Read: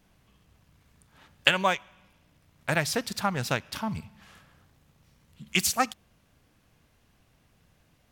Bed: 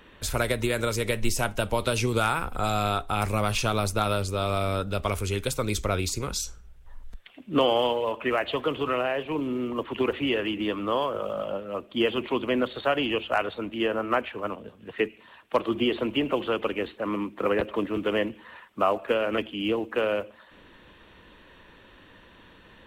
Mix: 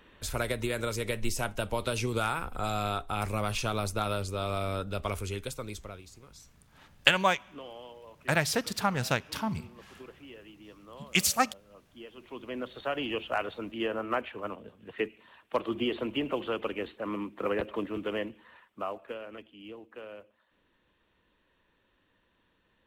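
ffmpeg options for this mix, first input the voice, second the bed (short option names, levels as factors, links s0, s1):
-filter_complex "[0:a]adelay=5600,volume=0.944[s0];[1:a]volume=3.98,afade=t=out:st=5.14:d=0.89:silence=0.133352,afade=t=in:st=12.14:d=1.07:silence=0.133352,afade=t=out:st=17.75:d=1.64:silence=0.211349[s1];[s0][s1]amix=inputs=2:normalize=0"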